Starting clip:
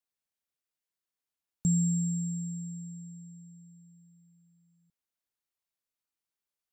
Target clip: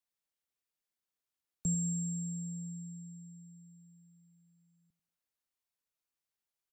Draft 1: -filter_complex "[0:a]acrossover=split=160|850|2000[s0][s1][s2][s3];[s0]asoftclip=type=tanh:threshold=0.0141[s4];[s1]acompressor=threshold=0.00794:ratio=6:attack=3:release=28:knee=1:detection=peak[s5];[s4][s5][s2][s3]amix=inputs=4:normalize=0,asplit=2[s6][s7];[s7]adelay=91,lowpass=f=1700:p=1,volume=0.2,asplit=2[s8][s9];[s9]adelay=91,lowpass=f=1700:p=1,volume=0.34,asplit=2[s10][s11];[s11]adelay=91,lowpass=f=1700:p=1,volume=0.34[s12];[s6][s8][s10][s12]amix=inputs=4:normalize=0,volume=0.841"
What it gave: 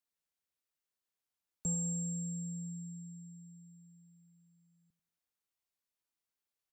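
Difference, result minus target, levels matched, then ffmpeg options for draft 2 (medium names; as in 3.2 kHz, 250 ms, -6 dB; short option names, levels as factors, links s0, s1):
saturation: distortion +17 dB
-filter_complex "[0:a]acrossover=split=160|850|2000[s0][s1][s2][s3];[s0]asoftclip=type=tanh:threshold=0.0562[s4];[s1]acompressor=threshold=0.00794:ratio=6:attack=3:release=28:knee=1:detection=peak[s5];[s4][s5][s2][s3]amix=inputs=4:normalize=0,asplit=2[s6][s7];[s7]adelay=91,lowpass=f=1700:p=1,volume=0.2,asplit=2[s8][s9];[s9]adelay=91,lowpass=f=1700:p=1,volume=0.34,asplit=2[s10][s11];[s11]adelay=91,lowpass=f=1700:p=1,volume=0.34[s12];[s6][s8][s10][s12]amix=inputs=4:normalize=0,volume=0.841"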